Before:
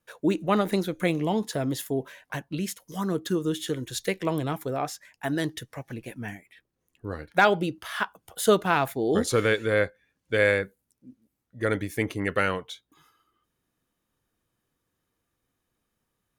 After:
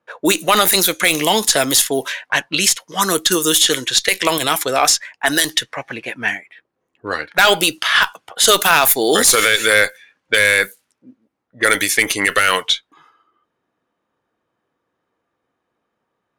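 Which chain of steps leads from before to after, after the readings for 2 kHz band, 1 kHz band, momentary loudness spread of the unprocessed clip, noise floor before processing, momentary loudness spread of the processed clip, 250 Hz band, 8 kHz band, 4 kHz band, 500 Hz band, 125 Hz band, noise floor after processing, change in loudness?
+14.0 dB, +10.5 dB, 16 LU, -80 dBFS, 10 LU, +4.0 dB, +23.0 dB, +21.5 dB, +6.5 dB, -1.5 dB, -75 dBFS, +12.0 dB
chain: level-controlled noise filter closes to 750 Hz, open at -23.5 dBFS; differentiator; valve stage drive 27 dB, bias 0.3; loudness maximiser +35.5 dB; trim -1 dB

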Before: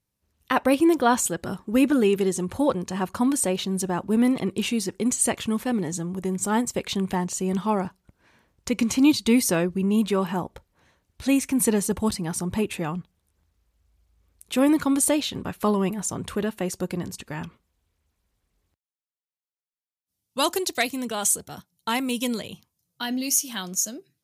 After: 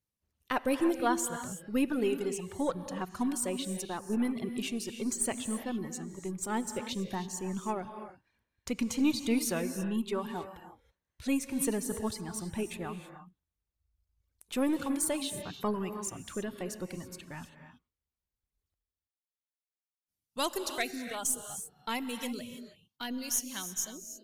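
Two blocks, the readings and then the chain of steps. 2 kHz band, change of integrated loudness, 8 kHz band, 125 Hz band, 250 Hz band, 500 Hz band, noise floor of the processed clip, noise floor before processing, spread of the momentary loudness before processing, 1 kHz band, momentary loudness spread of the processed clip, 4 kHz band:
-8.5 dB, -9.5 dB, -8.5 dB, -11.5 dB, -10.0 dB, -9.5 dB, under -85 dBFS, under -85 dBFS, 11 LU, -9.0 dB, 12 LU, -9.0 dB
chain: partial rectifier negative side -3 dB; reverb removal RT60 1.9 s; gated-style reverb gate 350 ms rising, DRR 8.5 dB; trim -7.5 dB

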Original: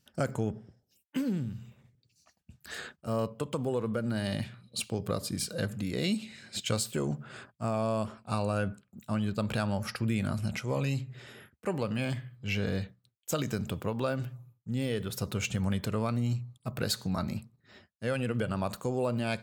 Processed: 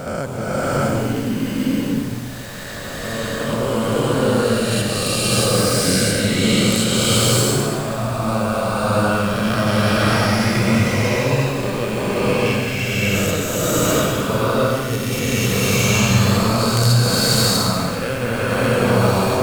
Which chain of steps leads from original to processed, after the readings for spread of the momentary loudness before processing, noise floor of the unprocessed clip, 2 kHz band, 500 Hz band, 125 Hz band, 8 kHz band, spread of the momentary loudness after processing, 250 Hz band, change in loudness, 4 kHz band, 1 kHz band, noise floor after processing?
9 LU, -75 dBFS, +18.0 dB, +15.0 dB, +14.0 dB, +19.5 dB, 8 LU, +14.0 dB, +15.0 dB, +19.0 dB, +17.0 dB, -27 dBFS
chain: reverse spectral sustain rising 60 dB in 2.79 s; in parallel at 0 dB: level held to a coarse grid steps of 14 dB; on the sum: added noise pink -42 dBFS; integer overflow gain 5.5 dB; swelling reverb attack 670 ms, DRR -8.5 dB; trim -3 dB

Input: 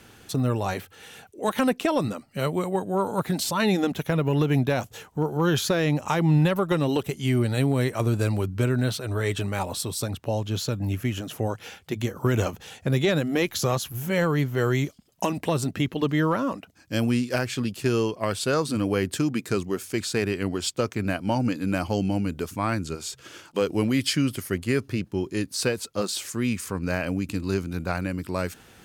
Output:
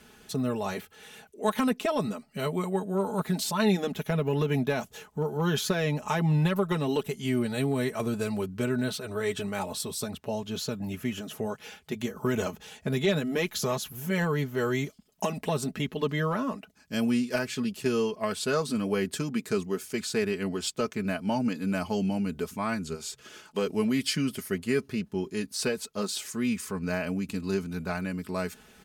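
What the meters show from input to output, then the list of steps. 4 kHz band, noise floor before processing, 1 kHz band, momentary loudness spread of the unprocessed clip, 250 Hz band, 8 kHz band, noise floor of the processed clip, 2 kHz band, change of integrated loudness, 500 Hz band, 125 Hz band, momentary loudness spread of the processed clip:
-3.5 dB, -53 dBFS, -4.0 dB, 7 LU, -3.0 dB, -3.5 dB, -57 dBFS, -3.5 dB, -4.0 dB, -3.0 dB, -6.5 dB, 8 LU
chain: comb 4.7 ms, depth 69%; trim -5 dB

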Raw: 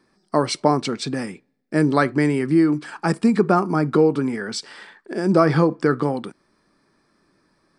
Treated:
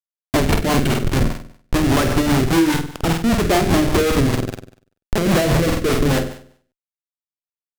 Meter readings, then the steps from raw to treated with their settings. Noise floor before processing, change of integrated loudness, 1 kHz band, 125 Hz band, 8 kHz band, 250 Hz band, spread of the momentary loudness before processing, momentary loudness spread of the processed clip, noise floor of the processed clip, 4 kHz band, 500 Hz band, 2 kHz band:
-66 dBFS, +2.0 dB, +0.5 dB, +5.0 dB, +9.0 dB, +1.5 dB, 12 LU, 8 LU, under -85 dBFS, +7.5 dB, +0.5 dB, +4.0 dB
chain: waveshaping leveller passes 2; low-pass sweep 2.7 kHz -> 680 Hz, 2.26–3.40 s; Schmitt trigger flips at -13 dBFS; flutter echo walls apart 8.3 m, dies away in 0.55 s; hard clipper -10.5 dBFS, distortion -16 dB; rotary cabinet horn 5 Hz

